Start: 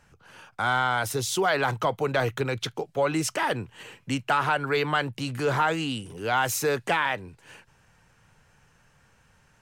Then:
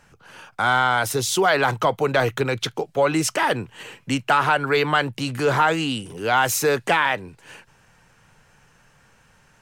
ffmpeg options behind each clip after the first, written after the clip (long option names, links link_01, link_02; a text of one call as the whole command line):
ffmpeg -i in.wav -af "equalizer=frequency=69:width_type=o:width=1.5:gain=-5.5,volume=5.5dB" out.wav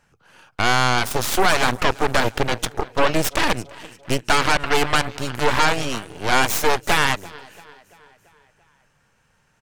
ffmpeg -i in.wav -af "aecho=1:1:339|678|1017|1356|1695:0.141|0.0819|0.0475|0.0276|0.016,aeval=exprs='0.473*(cos(1*acos(clip(val(0)/0.473,-1,1)))-cos(1*PI/2))+0.0335*(cos(3*acos(clip(val(0)/0.473,-1,1)))-cos(3*PI/2))+0.0422*(cos(5*acos(clip(val(0)/0.473,-1,1)))-cos(5*PI/2))+0.168*(cos(6*acos(clip(val(0)/0.473,-1,1)))-cos(6*PI/2))+0.0473*(cos(7*acos(clip(val(0)/0.473,-1,1)))-cos(7*PI/2))':channel_layout=same,volume=-1.5dB" out.wav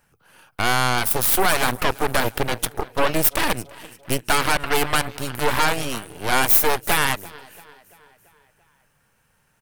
ffmpeg -i in.wav -af "aexciter=amount=5.2:drive=2.7:freq=9200,volume=-2dB" out.wav